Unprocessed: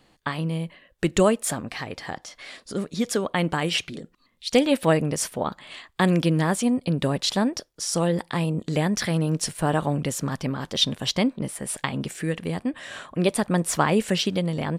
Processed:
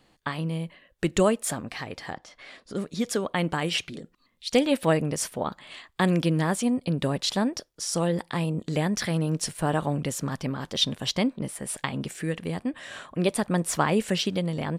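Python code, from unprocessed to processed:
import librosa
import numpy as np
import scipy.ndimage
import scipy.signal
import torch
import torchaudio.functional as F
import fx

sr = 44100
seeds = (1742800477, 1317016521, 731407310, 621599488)

y = fx.high_shelf(x, sr, hz=4700.0, db=-11.5, at=(2.13, 2.75))
y = y * 10.0 ** (-2.5 / 20.0)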